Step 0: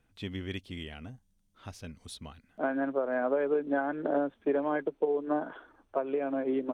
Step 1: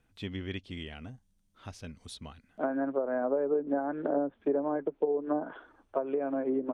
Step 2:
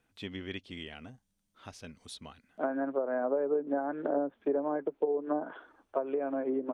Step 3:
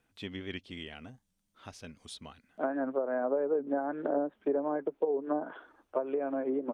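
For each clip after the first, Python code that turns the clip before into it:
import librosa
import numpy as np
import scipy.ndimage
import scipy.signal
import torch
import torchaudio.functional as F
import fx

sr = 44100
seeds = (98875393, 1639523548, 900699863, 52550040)

y1 = fx.env_lowpass_down(x, sr, base_hz=860.0, full_db=-25.0)
y2 = fx.low_shelf(y1, sr, hz=130.0, db=-12.0)
y3 = fx.record_warp(y2, sr, rpm=78.0, depth_cents=100.0)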